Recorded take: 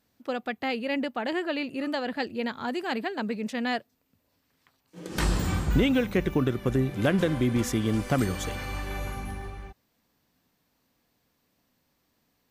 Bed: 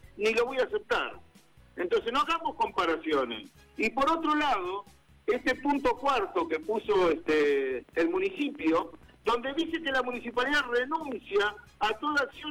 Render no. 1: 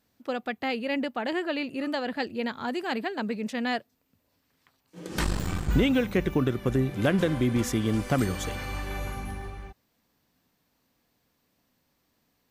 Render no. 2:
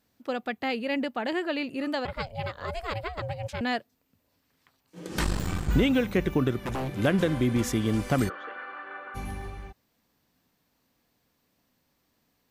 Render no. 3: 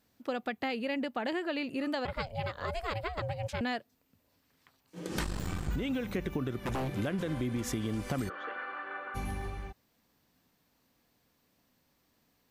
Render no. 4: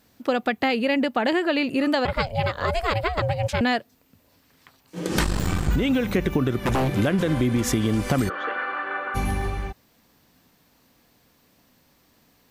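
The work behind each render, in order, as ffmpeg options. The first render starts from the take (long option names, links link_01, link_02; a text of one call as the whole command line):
ffmpeg -i in.wav -filter_complex "[0:a]asettb=1/sr,asplit=3[link_01][link_02][link_03];[link_01]atrim=end=5.234[link_04];[link_02]atrim=start=5.23:end=5.69,asetpts=PTS-STARTPTS,afade=type=in:duration=0.004:curve=qsin,afade=type=out:start_time=0.456:duration=0.004:curve=qsin,aeval=exprs='if(lt(val(0),0),0.251*val(0),val(0))':channel_layout=same[link_05];[link_03]atrim=start=5.686[link_06];[link_04][link_05]acrossfade=duration=0.004:curve1=hsin:curve2=qsin[link_07];[link_07][link_06]acrossfade=duration=0.004:curve1=qsin:curve2=hsin" out.wav
ffmpeg -i in.wav -filter_complex "[0:a]asettb=1/sr,asplit=3[link_01][link_02][link_03];[link_01]atrim=end=2.054[link_04];[link_02]atrim=start=2.05:end=3.61,asetpts=PTS-STARTPTS,afade=type=in:duration=0.004:curve=qsin,afade=type=out:start_time=1.556:duration=0.004:curve=qsin,aeval=exprs='val(0)*sin(2*PI*330*n/s)':channel_layout=same[link_05];[link_03]atrim=start=3.606[link_06];[link_04][link_05]acrossfade=duration=0.004:curve1=hsin:curve2=qsin[link_07];[link_07][link_06]acrossfade=duration=0.004:curve1=qsin:curve2=hsin,asettb=1/sr,asplit=3[link_08][link_09][link_10];[link_08]atrim=end=6.604[link_11];[link_09]atrim=start=6.6:end=7,asetpts=PTS-STARTPTS,afade=type=in:duration=0.004:curve=qsin,afade=type=out:start_time=0.396:duration=0.004:curve=qsin,aeval=exprs='0.0531*(abs(mod(val(0)/0.0531+3,4)-2)-1)':channel_layout=same[link_12];[link_10]atrim=start=6.996[link_13];[link_11][link_12]acrossfade=duration=0.004:curve1=hsin:curve2=qsin[link_14];[link_14][link_13]acrossfade=duration=0.004:curve1=qsin:curve2=hsin,asplit=3[link_15][link_16][link_17];[link_15]afade=type=out:start_time=8.28:duration=0.02[link_18];[link_16]highpass=frequency=400:width=0.5412,highpass=frequency=400:width=1.3066,equalizer=frequency=420:width_type=q:width=4:gain=-7,equalizer=frequency=600:width_type=q:width=4:gain=-5,equalizer=frequency=870:width_type=q:width=4:gain=-6,equalizer=frequency=1400:width_type=q:width=4:gain=9,equalizer=frequency=2300:width_type=q:width=4:gain=-8,lowpass=frequency=2300:width=0.5412,lowpass=frequency=2300:width=1.3066,afade=type=in:start_time=8.28:duration=0.02,afade=type=out:start_time=9.14:duration=0.02[link_19];[link_17]afade=type=in:start_time=9.14:duration=0.02[link_20];[link_18][link_19][link_20]amix=inputs=3:normalize=0" out.wav
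ffmpeg -i in.wav -af "alimiter=limit=-17dB:level=0:latency=1:release=71,acompressor=threshold=-30dB:ratio=6" out.wav
ffmpeg -i in.wav -af "volume=11.5dB" out.wav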